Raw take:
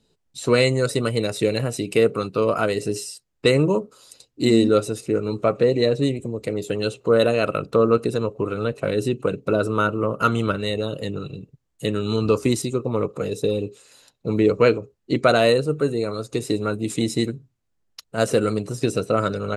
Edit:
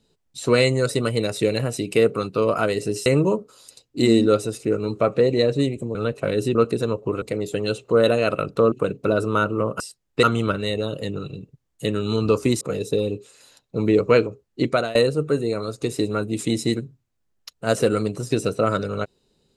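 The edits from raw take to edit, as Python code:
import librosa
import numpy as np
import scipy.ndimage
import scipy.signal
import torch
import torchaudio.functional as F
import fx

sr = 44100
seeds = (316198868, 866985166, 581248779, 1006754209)

y = fx.edit(x, sr, fx.move(start_s=3.06, length_s=0.43, to_s=10.23),
    fx.swap(start_s=6.38, length_s=1.5, other_s=8.55, other_length_s=0.6),
    fx.cut(start_s=12.61, length_s=0.51),
    fx.fade_out_to(start_s=15.15, length_s=0.31, floor_db=-21.0), tone=tone)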